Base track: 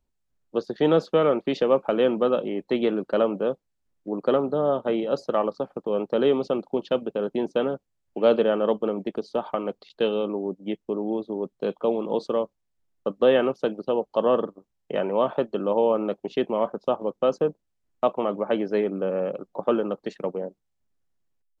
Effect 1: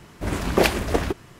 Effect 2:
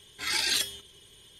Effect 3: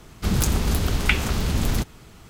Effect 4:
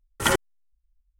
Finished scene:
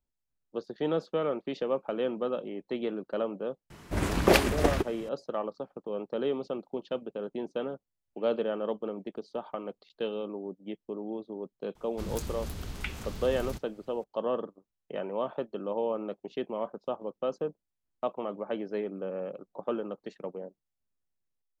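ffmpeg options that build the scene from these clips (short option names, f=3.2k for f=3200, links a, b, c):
-filter_complex "[0:a]volume=-9.5dB[a];[1:a]atrim=end=1.39,asetpts=PTS-STARTPTS,volume=-3dB,afade=t=in:d=0.004:c=hsin,afade=t=out:st=1.386:d=0.004:c=hsin,adelay=3700[b];[3:a]atrim=end=2.29,asetpts=PTS-STARTPTS,volume=-16dB,afade=t=in:d=0.004:c=hsin,afade=t=out:st=2.286:d=0.004:c=hsin,adelay=11750[c];[a][b][c]amix=inputs=3:normalize=0"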